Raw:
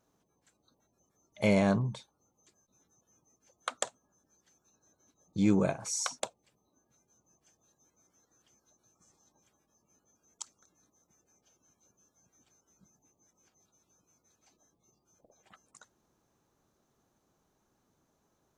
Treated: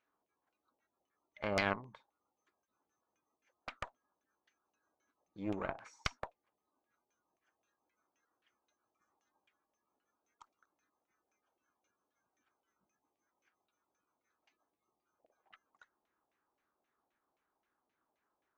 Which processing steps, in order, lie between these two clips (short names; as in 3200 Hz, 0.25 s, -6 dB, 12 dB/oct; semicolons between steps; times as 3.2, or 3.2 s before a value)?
resonant low shelf 220 Hz -11 dB, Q 1.5; LFO low-pass saw down 3.8 Hz 670–2600 Hz; passive tone stack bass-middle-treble 5-5-5; added harmonics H 3 -13 dB, 4 -13 dB, 6 -11 dB, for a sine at -12 dBFS; upward expander 1.5:1, over -51 dBFS; gain +16.5 dB